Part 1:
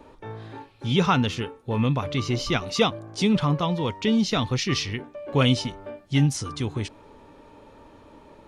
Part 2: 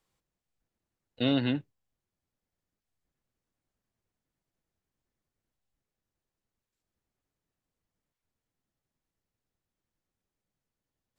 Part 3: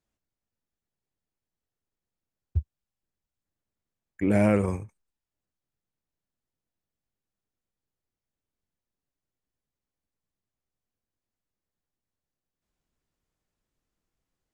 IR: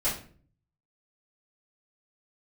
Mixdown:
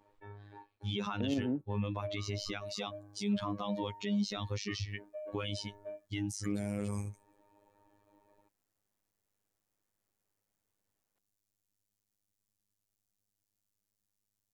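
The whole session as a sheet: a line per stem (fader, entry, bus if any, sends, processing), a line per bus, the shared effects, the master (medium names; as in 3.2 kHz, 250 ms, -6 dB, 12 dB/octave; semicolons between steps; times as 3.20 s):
+1.5 dB, 0.00 s, bus A, no send, expander on every frequency bin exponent 1.5; gate with hold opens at -58 dBFS; peak limiter -18.5 dBFS, peak gain reduction 9 dB
+2.5 dB, 0.00 s, no bus, no send, low-pass that closes with the level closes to 370 Hz; tone controls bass -8 dB, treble -14 dB
-2.0 dB, 2.25 s, bus A, no send, tone controls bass +8 dB, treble +13 dB
bus A: 0.0 dB, robot voice 102 Hz; compression 2:1, threshold -28 dBFS, peak gain reduction 8.5 dB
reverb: none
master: bass shelf 170 Hz -6 dB; peak limiter -23.5 dBFS, peak gain reduction 10.5 dB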